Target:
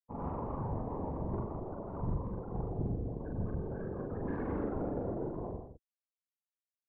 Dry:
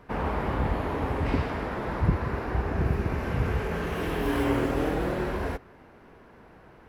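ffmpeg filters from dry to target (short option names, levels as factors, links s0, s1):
-filter_complex "[0:a]afwtdn=0.0158,afftfilt=real='re*gte(hypot(re,im),0.0631)':imag='im*gte(hypot(re,im),0.0631)':win_size=1024:overlap=0.75,aeval=exprs='(tanh(8.91*val(0)+0.15)-tanh(0.15))/8.91':c=same,afftfilt=real='hypot(re,im)*cos(2*PI*random(0))':imag='hypot(re,im)*sin(2*PI*random(1))':win_size=512:overlap=0.75,asplit=2[s0][s1];[s1]adelay=42,volume=0.708[s2];[s0][s2]amix=inputs=2:normalize=0,asplit=2[s3][s4];[s4]aecho=0:1:95|164:0.299|0.316[s5];[s3][s5]amix=inputs=2:normalize=0,volume=0.631"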